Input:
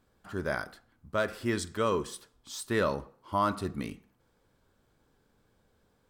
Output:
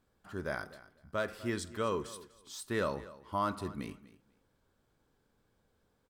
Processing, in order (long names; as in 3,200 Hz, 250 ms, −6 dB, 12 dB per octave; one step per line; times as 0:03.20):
repeating echo 247 ms, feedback 18%, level −18 dB
level −5 dB